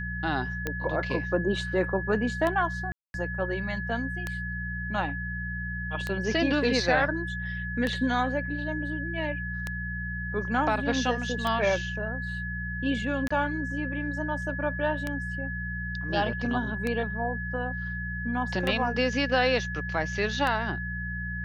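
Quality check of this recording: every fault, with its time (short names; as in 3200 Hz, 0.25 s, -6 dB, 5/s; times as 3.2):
hum 60 Hz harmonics 3 -35 dBFS
tick 33 1/3 rpm -15 dBFS
tone 1700 Hz -34 dBFS
2.92–3.14 gap 0.221 s
13.28–13.3 gap 25 ms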